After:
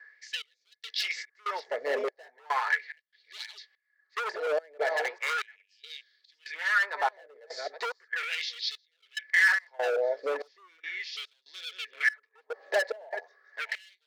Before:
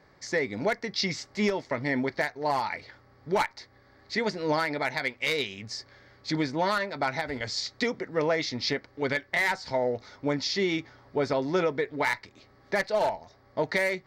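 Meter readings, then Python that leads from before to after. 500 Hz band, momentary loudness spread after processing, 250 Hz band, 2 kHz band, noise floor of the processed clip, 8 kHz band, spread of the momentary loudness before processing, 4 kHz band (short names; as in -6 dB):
-5.0 dB, 19 LU, under -20 dB, +2.0 dB, -77 dBFS, -5.0 dB, 7 LU, -3.0 dB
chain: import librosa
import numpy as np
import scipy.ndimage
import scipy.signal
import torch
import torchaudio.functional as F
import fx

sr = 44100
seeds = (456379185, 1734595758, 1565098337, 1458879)

y = fx.reverse_delay(x, sr, ms=432, wet_db=-9)
y = fx.bass_treble(y, sr, bass_db=-13, treble_db=-5)
y = fx.small_body(y, sr, hz=(450.0, 1700.0), ring_ms=40, db=17)
y = fx.rotary(y, sr, hz=0.7)
y = np.clip(y, -10.0 ** (-24.5 / 20.0), 10.0 ** (-24.5 / 20.0))
y = fx.step_gate(y, sr, bpm=72, pattern='xx..xx.x', floor_db=-24.0, edge_ms=4.5)
y = fx.filter_lfo_highpass(y, sr, shape='sine', hz=0.37, low_hz=590.0, high_hz=3800.0, q=3.4)
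y = y * librosa.db_to_amplitude(-2.5)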